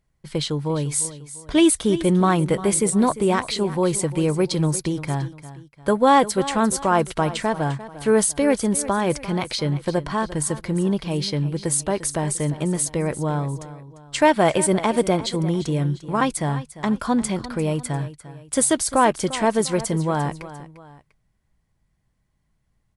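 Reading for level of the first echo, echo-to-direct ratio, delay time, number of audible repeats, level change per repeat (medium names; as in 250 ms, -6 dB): -15.0 dB, -14.5 dB, 348 ms, 2, -7.5 dB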